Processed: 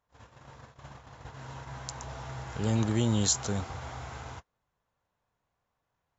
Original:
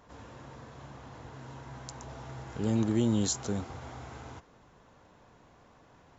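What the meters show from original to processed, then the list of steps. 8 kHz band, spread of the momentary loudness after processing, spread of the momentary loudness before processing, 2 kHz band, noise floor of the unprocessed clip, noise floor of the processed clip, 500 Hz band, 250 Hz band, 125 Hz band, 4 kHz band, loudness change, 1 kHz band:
can't be measured, 23 LU, 21 LU, +4.5 dB, −60 dBFS, −83 dBFS, −0.5 dB, −1.5 dB, +3.5 dB, +5.5 dB, +1.5 dB, +3.5 dB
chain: noise gate −46 dBFS, range −26 dB
parametric band 290 Hz −9 dB 1.5 octaves
level +5.5 dB

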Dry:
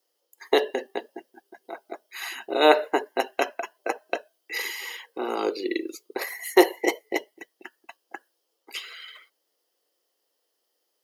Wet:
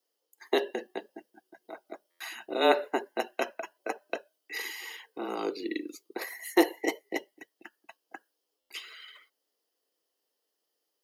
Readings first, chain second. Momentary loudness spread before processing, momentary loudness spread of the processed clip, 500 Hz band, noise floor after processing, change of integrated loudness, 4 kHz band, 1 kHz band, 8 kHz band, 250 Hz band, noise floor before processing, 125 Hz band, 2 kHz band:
24 LU, 24 LU, −6.5 dB, −83 dBFS, −6.0 dB, −6.0 dB, −6.5 dB, −6.0 dB, −4.0 dB, −77 dBFS, can't be measured, −6.0 dB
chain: frequency shifter −25 Hz
buffer that repeats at 0:02.10/0:08.60, samples 512, times 8
level −6 dB

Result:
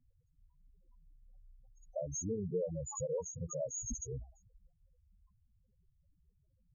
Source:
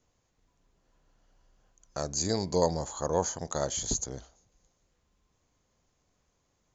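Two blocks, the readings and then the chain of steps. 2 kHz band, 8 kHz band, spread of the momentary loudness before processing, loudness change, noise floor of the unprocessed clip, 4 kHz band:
below −35 dB, can't be measured, 10 LU, −8.5 dB, −75 dBFS, below −40 dB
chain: downward compressor 20 to 1, threshold −35 dBFS, peak gain reduction 16.5 dB
spectral peaks only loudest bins 4
level +7 dB

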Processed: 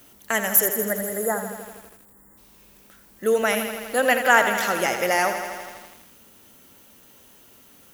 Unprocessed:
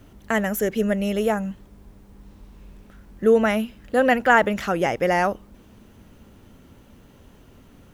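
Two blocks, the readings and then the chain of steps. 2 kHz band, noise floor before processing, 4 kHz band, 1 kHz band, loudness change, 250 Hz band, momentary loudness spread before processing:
+2.0 dB, −51 dBFS, +4.5 dB, −0.5 dB, 0.0 dB, −7.5 dB, 8 LU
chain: time-frequency box erased 0:00.66–0:02.38, 2,100–6,700 Hz
RIAA equalisation recording
feedback echo at a low word length 82 ms, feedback 80%, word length 7 bits, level −9 dB
level −1 dB

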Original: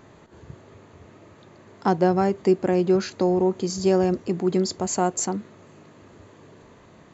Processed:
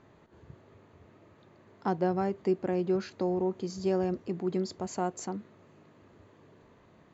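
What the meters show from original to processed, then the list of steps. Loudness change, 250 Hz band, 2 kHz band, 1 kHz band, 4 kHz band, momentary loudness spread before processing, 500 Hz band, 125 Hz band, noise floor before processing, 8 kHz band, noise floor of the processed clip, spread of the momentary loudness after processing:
−9.0 dB, −8.5 dB, −9.5 dB, −9.0 dB, −12.0 dB, 5 LU, −8.5 dB, −8.5 dB, −51 dBFS, can't be measured, −60 dBFS, 6 LU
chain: high-frequency loss of the air 94 metres
level −8.5 dB

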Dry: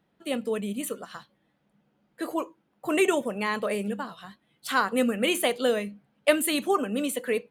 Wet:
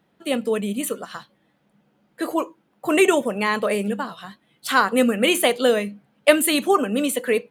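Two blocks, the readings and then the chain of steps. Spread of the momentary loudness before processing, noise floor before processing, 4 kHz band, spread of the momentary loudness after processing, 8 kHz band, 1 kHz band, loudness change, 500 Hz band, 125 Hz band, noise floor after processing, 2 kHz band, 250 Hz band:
15 LU, −72 dBFS, +6.5 dB, 15 LU, +6.5 dB, +6.5 dB, +6.5 dB, +6.5 dB, can't be measured, −66 dBFS, +6.5 dB, +6.0 dB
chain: low-shelf EQ 63 Hz −8.5 dB
level +6.5 dB

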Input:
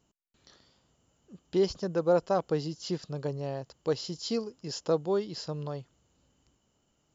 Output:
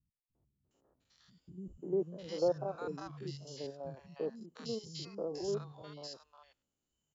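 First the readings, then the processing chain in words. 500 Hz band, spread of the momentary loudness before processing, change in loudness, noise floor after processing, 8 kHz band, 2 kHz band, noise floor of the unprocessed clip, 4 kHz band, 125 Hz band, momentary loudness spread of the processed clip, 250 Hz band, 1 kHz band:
−7.5 dB, 10 LU, −8.0 dB, below −85 dBFS, can't be measured, −9.5 dB, −74 dBFS, −8.0 dB, −10.0 dB, 14 LU, −9.0 dB, −10.0 dB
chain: spectrum averaged block by block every 100 ms
reverb reduction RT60 1.6 s
three-band delay without the direct sound lows, mids, highs 350/710 ms, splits 190/950 Hz
level −3.5 dB

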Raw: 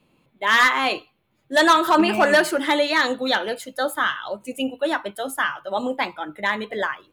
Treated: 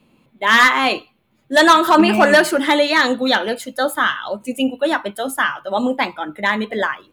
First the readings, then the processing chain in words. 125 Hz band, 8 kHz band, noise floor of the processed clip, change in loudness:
can't be measured, +4.5 dB, −60 dBFS, +4.5 dB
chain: parametric band 230 Hz +7.5 dB 0.29 octaves
level +4.5 dB

